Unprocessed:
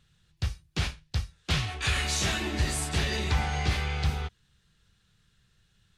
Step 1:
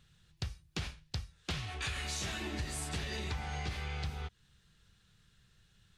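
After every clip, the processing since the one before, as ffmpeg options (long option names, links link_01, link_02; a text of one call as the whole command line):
ffmpeg -i in.wav -af "acompressor=threshold=-36dB:ratio=5" out.wav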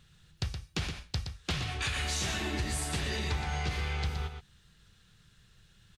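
ffmpeg -i in.wav -af "aecho=1:1:120:0.422,volume=4.5dB" out.wav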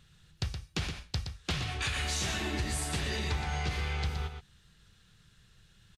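ffmpeg -i in.wav -af "aresample=32000,aresample=44100" out.wav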